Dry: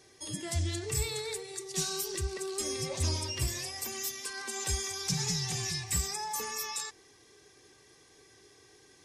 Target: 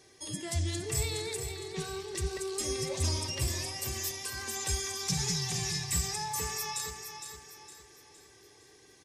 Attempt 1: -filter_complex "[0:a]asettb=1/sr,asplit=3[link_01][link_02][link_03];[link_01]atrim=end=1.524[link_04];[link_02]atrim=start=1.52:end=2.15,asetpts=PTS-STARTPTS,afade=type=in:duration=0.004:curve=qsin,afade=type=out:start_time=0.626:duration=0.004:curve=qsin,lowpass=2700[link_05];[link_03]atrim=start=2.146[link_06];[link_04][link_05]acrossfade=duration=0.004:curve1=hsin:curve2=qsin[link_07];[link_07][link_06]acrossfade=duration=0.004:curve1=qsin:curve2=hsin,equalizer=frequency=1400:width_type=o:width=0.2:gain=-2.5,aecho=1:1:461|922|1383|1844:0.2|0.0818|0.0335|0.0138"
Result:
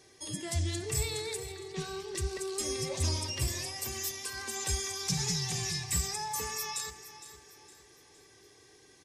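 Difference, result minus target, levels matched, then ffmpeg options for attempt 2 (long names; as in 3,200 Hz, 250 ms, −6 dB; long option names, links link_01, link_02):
echo-to-direct −6 dB
-filter_complex "[0:a]asettb=1/sr,asplit=3[link_01][link_02][link_03];[link_01]atrim=end=1.524[link_04];[link_02]atrim=start=1.52:end=2.15,asetpts=PTS-STARTPTS,afade=type=in:duration=0.004:curve=qsin,afade=type=out:start_time=0.626:duration=0.004:curve=qsin,lowpass=2700[link_05];[link_03]atrim=start=2.146[link_06];[link_04][link_05]acrossfade=duration=0.004:curve1=hsin:curve2=qsin[link_07];[link_07][link_06]acrossfade=duration=0.004:curve1=qsin:curve2=hsin,equalizer=frequency=1400:width_type=o:width=0.2:gain=-2.5,aecho=1:1:461|922|1383|1844|2305:0.398|0.163|0.0669|0.0274|0.0112"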